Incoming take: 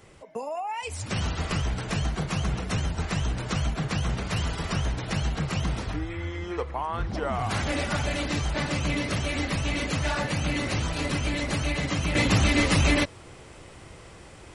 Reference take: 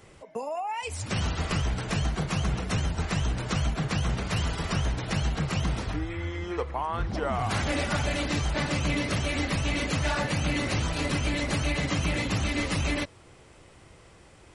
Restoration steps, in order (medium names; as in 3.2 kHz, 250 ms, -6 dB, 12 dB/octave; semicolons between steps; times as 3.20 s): gain correction -6.5 dB, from 12.15 s